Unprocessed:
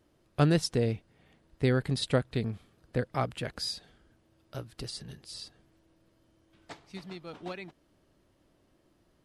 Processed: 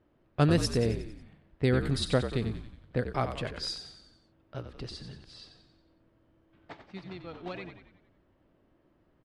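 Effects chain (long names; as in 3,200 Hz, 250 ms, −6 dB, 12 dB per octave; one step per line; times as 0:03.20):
low-pass that shuts in the quiet parts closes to 2,200 Hz, open at −26.5 dBFS
echo with shifted repeats 91 ms, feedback 51%, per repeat −52 Hz, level −9 dB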